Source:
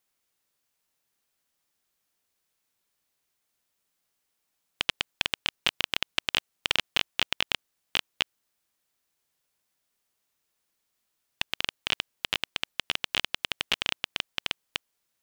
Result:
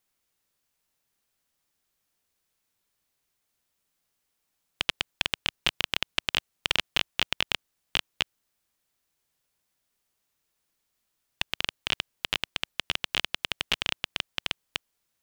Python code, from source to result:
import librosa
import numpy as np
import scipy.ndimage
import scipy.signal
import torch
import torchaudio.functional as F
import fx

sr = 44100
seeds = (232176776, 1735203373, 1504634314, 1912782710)

y = fx.low_shelf(x, sr, hz=140.0, db=6.0)